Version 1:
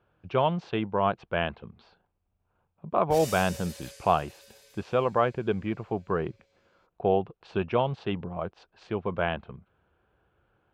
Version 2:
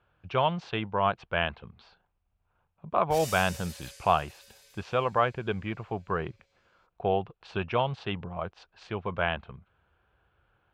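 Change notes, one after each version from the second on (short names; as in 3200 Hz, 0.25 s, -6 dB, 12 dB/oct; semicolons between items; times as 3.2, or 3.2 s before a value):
speech +3.5 dB; master: add bell 300 Hz -9 dB 2.5 oct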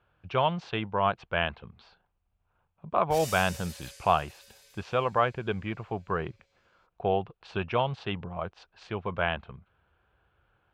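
none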